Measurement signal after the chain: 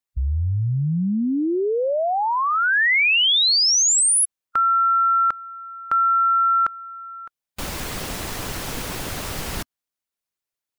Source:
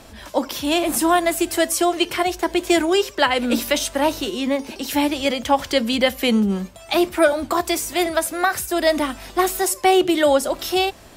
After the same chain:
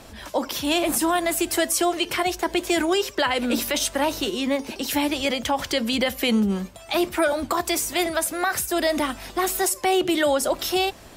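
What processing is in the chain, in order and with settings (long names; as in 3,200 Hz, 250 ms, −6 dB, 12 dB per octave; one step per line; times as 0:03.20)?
harmonic and percussive parts rebalanced harmonic −4 dB
brickwall limiter −14 dBFS
level +1.5 dB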